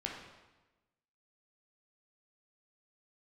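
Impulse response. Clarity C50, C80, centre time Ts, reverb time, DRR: 2.5 dB, 5.0 dB, 52 ms, 1.1 s, -1.5 dB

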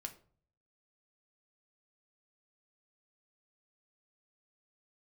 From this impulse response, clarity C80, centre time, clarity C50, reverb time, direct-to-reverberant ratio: 18.5 dB, 8 ms, 14.0 dB, 0.50 s, 4.5 dB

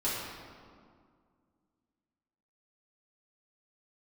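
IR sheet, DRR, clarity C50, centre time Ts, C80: -10.0 dB, -1.0 dB, 107 ms, 1.5 dB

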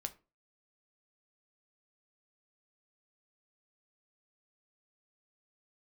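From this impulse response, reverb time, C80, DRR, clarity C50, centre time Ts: 0.30 s, 24.0 dB, 7.5 dB, 18.0 dB, 5 ms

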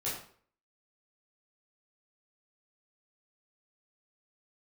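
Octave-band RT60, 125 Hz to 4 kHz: 0.50 s, 0.50 s, 0.55 s, 0.50 s, 0.45 s, 0.40 s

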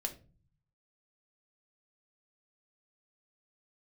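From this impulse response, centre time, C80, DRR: 8 ms, 19.0 dB, 4.0 dB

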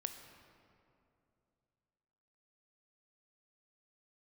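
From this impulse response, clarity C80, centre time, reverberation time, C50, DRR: 8.5 dB, 34 ms, 2.7 s, 7.5 dB, 6.5 dB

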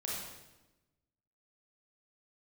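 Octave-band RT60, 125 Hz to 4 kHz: 1.4 s, 1.3 s, 1.1 s, 0.95 s, 0.95 s, 0.90 s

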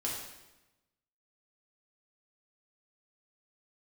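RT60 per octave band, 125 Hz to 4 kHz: 1.3 s, 1.1 s, 1.0 s, 1.0 s, 1.0 s, 0.90 s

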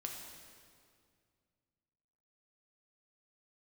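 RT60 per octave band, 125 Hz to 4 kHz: 3.0 s, 2.6 s, 2.3 s, 2.0 s, 1.9 s, 1.8 s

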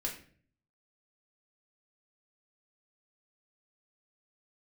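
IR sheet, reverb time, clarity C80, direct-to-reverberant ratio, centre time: 0.50 s, 12.5 dB, -2.0 dB, 22 ms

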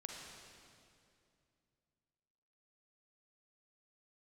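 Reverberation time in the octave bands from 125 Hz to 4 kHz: 3.3 s, 3.0 s, 2.7 s, 2.3 s, 2.2 s, 2.1 s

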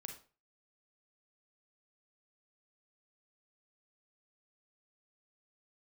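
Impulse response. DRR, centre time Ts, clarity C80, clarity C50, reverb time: 3.5 dB, 18 ms, 13.0 dB, 7.5 dB, 0.35 s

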